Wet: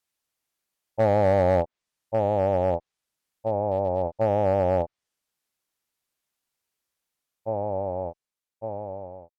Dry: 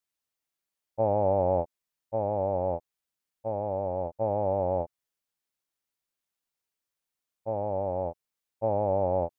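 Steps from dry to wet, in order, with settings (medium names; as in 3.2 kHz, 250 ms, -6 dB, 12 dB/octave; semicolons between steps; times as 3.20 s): fade out at the end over 2.53 s; low-pass that closes with the level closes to 1.4 kHz, closed at -22.5 dBFS; one-sided clip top -24 dBFS, bottom -17 dBFS; trim +5.5 dB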